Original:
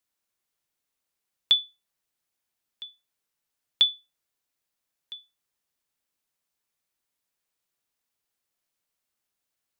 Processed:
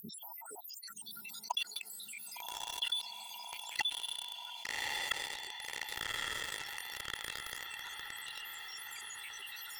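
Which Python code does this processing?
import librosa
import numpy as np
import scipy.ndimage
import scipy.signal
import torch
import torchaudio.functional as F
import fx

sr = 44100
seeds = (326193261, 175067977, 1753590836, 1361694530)

y = fx.spec_dropout(x, sr, seeds[0], share_pct=81)
y = fx.filter_sweep_highpass(y, sr, from_hz=210.0, to_hz=3200.0, start_s=0.31, end_s=0.81, q=3.7)
y = fx.formant_shift(y, sr, semitones=-5)
y = fx.env_lowpass_down(y, sr, base_hz=360.0, full_db=-46.0)
y = fx.low_shelf_res(y, sr, hz=390.0, db=11.0, q=1.5)
y = fx.echo_diffused(y, sr, ms=1162, feedback_pct=54, wet_db=-12.0)
y = fx.leveller(y, sr, passes=3)
y = y + 0.31 * np.pad(y, (int(2.2 * sr / 1000.0), 0))[:len(y)]
y = fx.env_flatten(y, sr, amount_pct=70)
y = F.gain(torch.from_numpy(y), 12.0).numpy()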